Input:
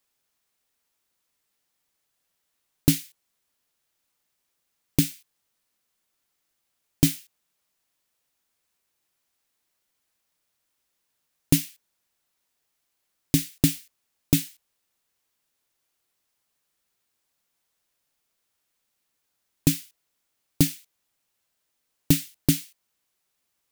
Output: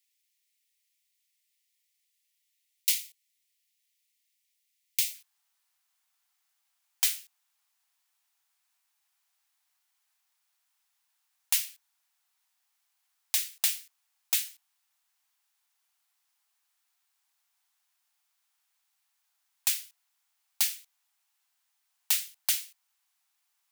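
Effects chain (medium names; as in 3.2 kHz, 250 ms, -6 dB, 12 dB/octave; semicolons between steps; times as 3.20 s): steep high-pass 1.9 kHz 72 dB/octave, from 5.13 s 710 Hz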